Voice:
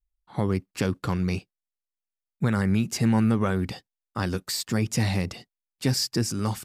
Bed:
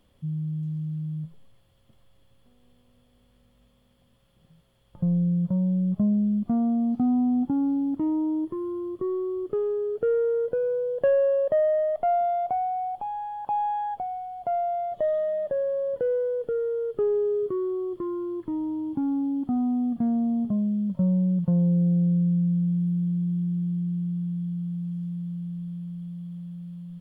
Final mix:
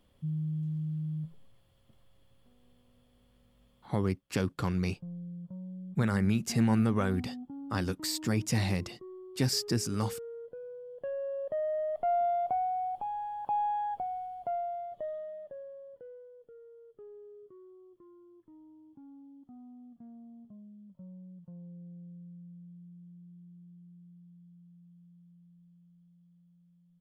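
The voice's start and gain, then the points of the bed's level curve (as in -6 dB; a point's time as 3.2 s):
3.55 s, -4.5 dB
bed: 3.85 s -3.5 dB
4.08 s -18.5 dB
10.83 s -18.5 dB
12.25 s -4 dB
14.23 s -4 dB
16.31 s -26 dB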